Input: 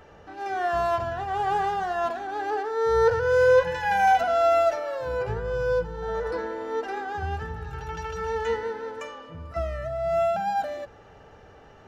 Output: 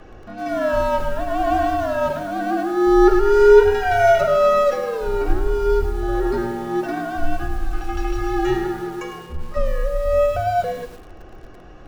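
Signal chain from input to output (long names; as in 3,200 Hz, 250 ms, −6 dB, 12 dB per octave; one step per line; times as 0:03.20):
parametric band 100 Hz +12 dB 2.7 octaves
frequency shifter −93 Hz
0:07.68–0:08.67: double-tracking delay 32 ms −6.5 dB
feedback echo at a low word length 104 ms, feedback 35%, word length 7 bits, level −9.5 dB
level +4 dB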